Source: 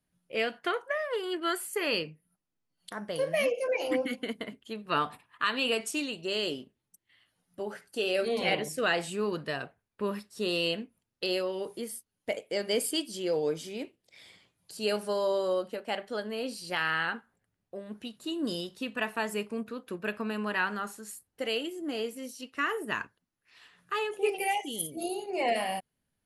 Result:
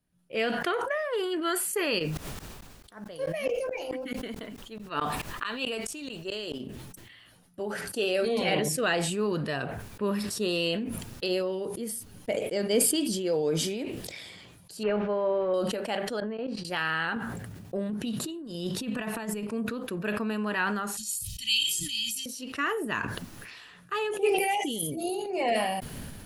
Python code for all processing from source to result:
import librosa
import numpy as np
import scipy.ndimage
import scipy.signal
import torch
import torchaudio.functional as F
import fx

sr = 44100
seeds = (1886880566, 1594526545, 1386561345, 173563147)

y = fx.low_shelf(x, sr, hz=99.0, db=-11.5, at=(1.98, 6.59), fade=0.02)
y = fx.dmg_noise_colour(y, sr, seeds[0], colour='pink', level_db=-63.0, at=(1.98, 6.59), fade=0.02)
y = fx.tremolo_decay(y, sr, direction='swelling', hz=4.6, depth_db=27, at=(1.98, 6.59), fade=0.02)
y = fx.chain(y, sr, fx.low_shelf(hz=470.0, db=5.0),
    fx.upward_expand(threshold_db=-42.0, expansion=1.5), at=(11.28, 13.25))
y = fx.chain(y, sr, fx.delta_mod(bps=64000, step_db=-40.5),
    fx.lowpass(hz=2400.0, slope=24), at=(14.83, 15.54))
y = fx.chain(y, sr, fx.lowpass(hz=1900.0, slope=12),
    fx.level_steps(step_db=17), at=(16.2, 16.65))
y = fx.chain(y, sr, fx.highpass(hz=110.0, slope=12),
    fx.low_shelf(hz=190.0, db=10.5),
    fx.over_compress(threshold_db=-36.0, ratio=-0.5), at=(17.16, 19.47))
y = fx.chain(y, sr, fx.ellip_bandstop(low_hz=160.0, high_hz=3000.0, order=3, stop_db=60),
    fx.peak_eq(hz=5400.0, db=11.5, octaves=3.0),
    fx.comb(ms=1.6, depth=0.66), at=(20.97, 22.26))
y = fx.low_shelf(y, sr, hz=300.0, db=5.0)
y = fx.notch(y, sr, hz=2100.0, q=27.0)
y = fx.sustainer(y, sr, db_per_s=29.0)